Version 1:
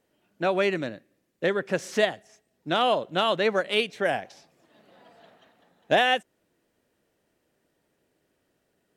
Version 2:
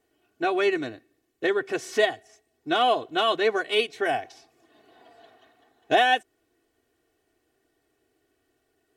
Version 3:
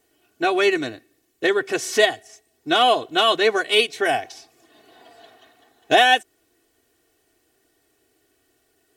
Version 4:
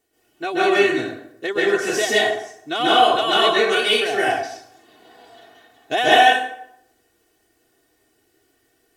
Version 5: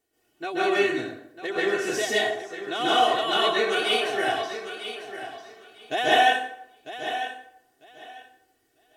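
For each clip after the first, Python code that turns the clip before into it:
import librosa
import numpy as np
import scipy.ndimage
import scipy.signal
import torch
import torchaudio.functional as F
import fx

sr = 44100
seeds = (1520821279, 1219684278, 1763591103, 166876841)

y1 = x + 0.93 * np.pad(x, (int(2.7 * sr / 1000.0), 0))[:len(x)]
y1 = y1 * 10.0 ** (-2.0 / 20.0)
y2 = fx.high_shelf(y1, sr, hz=3500.0, db=9.0)
y2 = y2 * 10.0 ** (4.0 / 20.0)
y3 = fx.rev_plate(y2, sr, seeds[0], rt60_s=0.74, hf_ratio=0.65, predelay_ms=120, drr_db=-8.0)
y3 = y3 * 10.0 ** (-6.5 / 20.0)
y4 = fx.echo_feedback(y3, sr, ms=948, feedback_pct=19, wet_db=-11.0)
y4 = y4 * 10.0 ** (-6.0 / 20.0)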